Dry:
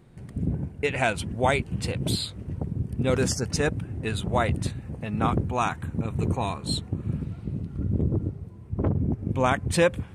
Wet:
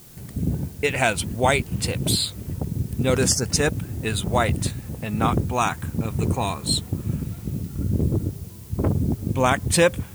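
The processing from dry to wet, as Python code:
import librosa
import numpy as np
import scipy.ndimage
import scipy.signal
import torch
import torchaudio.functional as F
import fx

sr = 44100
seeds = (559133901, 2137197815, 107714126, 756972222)

p1 = fx.quant_dither(x, sr, seeds[0], bits=8, dither='triangular')
p2 = x + F.gain(torch.from_numpy(p1), -8.0).numpy()
y = fx.high_shelf(p2, sr, hz=5200.0, db=10.0)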